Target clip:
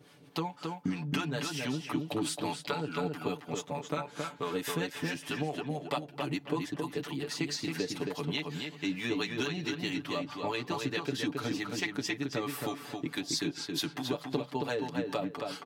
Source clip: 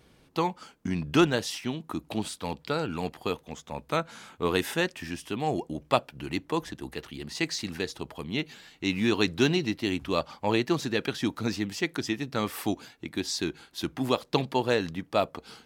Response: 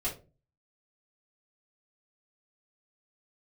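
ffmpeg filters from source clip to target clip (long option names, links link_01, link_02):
-filter_complex "[0:a]highpass=130,aecho=1:1:6.9:0.83,acompressor=threshold=-31dB:ratio=6,acrossover=split=620[link_01][link_02];[link_01]aeval=exprs='val(0)*(1-0.7/2+0.7/2*cos(2*PI*4.6*n/s))':channel_layout=same[link_03];[link_02]aeval=exprs='val(0)*(1-0.7/2-0.7/2*cos(2*PI*4.6*n/s))':channel_layout=same[link_04];[link_03][link_04]amix=inputs=2:normalize=0,asplit=2[link_05][link_06];[link_06]adelay=271,lowpass=frequency=3600:poles=1,volume=-3.5dB,asplit=2[link_07][link_08];[link_08]adelay=271,lowpass=frequency=3600:poles=1,volume=0.23,asplit=2[link_09][link_10];[link_10]adelay=271,lowpass=frequency=3600:poles=1,volume=0.23[link_11];[link_07][link_09][link_11]amix=inputs=3:normalize=0[link_12];[link_05][link_12]amix=inputs=2:normalize=0,volume=3.5dB"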